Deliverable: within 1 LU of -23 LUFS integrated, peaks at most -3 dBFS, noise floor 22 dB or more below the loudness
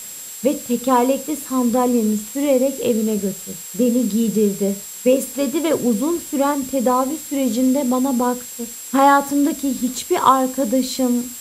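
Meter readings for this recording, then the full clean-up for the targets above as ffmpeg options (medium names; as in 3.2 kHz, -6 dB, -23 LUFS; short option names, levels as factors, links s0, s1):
steady tone 7.6 kHz; tone level -34 dBFS; noise floor -34 dBFS; noise floor target -41 dBFS; loudness -19.0 LUFS; peak level -1.0 dBFS; loudness target -23.0 LUFS
-> -af "bandreject=f=7600:w=30"
-af "afftdn=nr=7:nf=-34"
-af "volume=0.631"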